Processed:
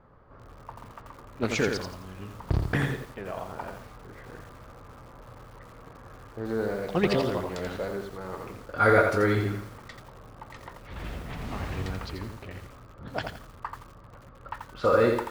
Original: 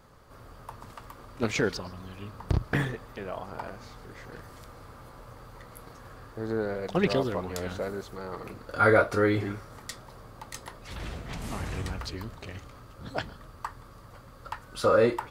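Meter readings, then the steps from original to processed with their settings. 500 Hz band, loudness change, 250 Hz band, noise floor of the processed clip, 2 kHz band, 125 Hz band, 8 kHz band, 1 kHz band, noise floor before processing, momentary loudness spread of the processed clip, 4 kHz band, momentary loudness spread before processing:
+0.5 dB, +1.0 dB, +1.0 dB, −50 dBFS, +1.0 dB, +1.5 dB, −2.0 dB, +1.0 dB, −50 dBFS, 24 LU, 0.0 dB, 23 LU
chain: low-pass that shuts in the quiet parts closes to 1,500 Hz, open at −23.5 dBFS
feedback echo at a low word length 85 ms, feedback 35%, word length 8 bits, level −5 dB

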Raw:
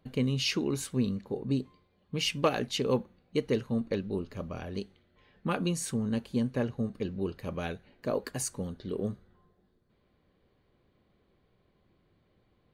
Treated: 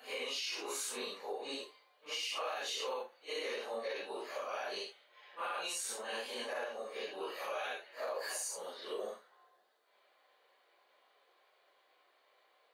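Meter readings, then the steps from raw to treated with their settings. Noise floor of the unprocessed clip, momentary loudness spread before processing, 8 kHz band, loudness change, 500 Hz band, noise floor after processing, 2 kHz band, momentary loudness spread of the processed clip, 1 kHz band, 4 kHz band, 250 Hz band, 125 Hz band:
−71 dBFS, 10 LU, −2.0 dB, −7.5 dB, −7.0 dB, −72 dBFS, −1.0 dB, 6 LU, −2.0 dB, −3.0 dB, −23.5 dB, below −40 dB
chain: random phases in long frames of 200 ms
high-pass filter 610 Hz 24 dB per octave
downward compressor 3 to 1, threshold −43 dBFS, peak gain reduction 12.5 dB
brickwall limiter −37.5 dBFS, peak gain reduction 7.5 dB
level +7.5 dB

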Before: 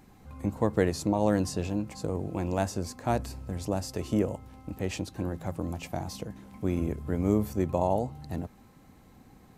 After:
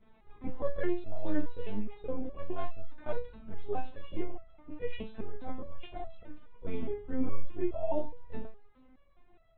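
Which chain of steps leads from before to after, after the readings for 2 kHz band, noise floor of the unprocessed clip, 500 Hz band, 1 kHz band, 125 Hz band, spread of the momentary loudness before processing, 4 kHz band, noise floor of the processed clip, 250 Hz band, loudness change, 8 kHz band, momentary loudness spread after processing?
−7.5 dB, −56 dBFS, −7.0 dB, −9.5 dB, −14.0 dB, 11 LU, −12.5 dB, −61 dBFS, −9.0 dB, −9.0 dB, below −35 dB, 12 LU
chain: dynamic equaliser 100 Hz, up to +6 dB, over −48 dBFS, Q 3.3
linear-prediction vocoder at 8 kHz pitch kept
step-sequenced resonator 4.8 Hz 220–660 Hz
level +9 dB

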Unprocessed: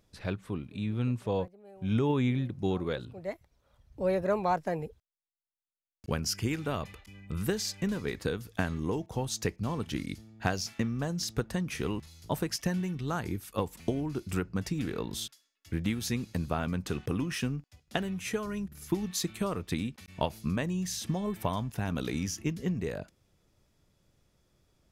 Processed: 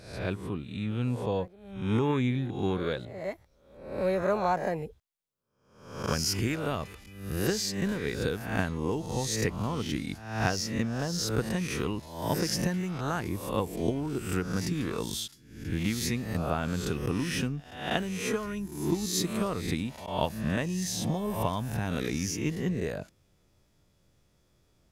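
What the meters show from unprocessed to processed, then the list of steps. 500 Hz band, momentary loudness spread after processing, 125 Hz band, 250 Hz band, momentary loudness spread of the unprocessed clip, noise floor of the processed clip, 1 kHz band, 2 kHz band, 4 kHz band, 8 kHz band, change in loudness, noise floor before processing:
+2.5 dB, 8 LU, +1.5 dB, +1.5 dB, 8 LU, −67 dBFS, +2.5 dB, +3.5 dB, +3.5 dB, +3.5 dB, +2.0 dB, −77 dBFS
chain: peak hold with a rise ahead of every peak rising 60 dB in 0.67 s

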